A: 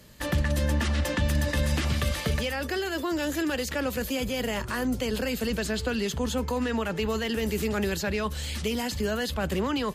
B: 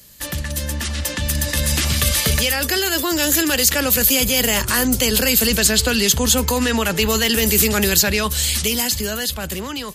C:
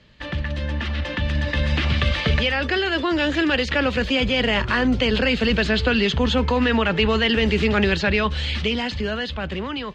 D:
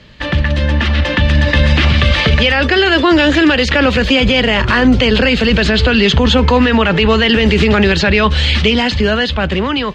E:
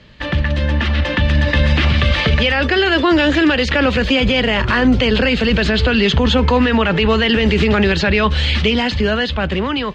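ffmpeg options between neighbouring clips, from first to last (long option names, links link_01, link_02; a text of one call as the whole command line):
ffmpeg -i in.wav -af "lowshelf=frequency=170:gain=4,dynaudnorm=framelen=390:gausssize=9:maxgain=11dB,crystalizer=i=5.5:c=0,volume=-4dB" out.wav
ffmpeg -i in.wav -af "lowpass=frequency=3300:width=0.5412,lowpass=frequency=3300:width=1.3066" out.wav
ffmpeg -i in.wav -af "alimiter=level_in=13dB:limit=-1dB:release=50:level=0:latency=1,volume=-1dB" out.wav
ffmpeg -i in.wav -af "highshelf=frequency=6000:gain=-5,volume=-3dB" out.wav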